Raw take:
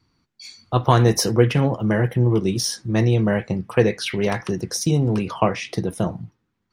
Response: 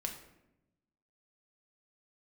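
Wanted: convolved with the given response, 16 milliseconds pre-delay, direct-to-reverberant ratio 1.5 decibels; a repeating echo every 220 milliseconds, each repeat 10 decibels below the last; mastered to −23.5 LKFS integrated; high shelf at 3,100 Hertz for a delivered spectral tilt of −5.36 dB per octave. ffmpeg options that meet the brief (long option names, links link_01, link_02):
-filter_complex "[0:a]highshelf=frequency=3100:gain=3.5,aecho=1:1:220|440|660|880:0.316|0.101|0.0324|0.0104,asplit=2[link_01][link_02];[1:a]atrim=start_sample=2205,adelay=16[link_03];[link_02][link_03]afir=irnorm=-1:irlink=0,volume=-1.5dB[link_04];[link_01][link_04]amix=inputs=2:normalize=0,volume=-6.5dB"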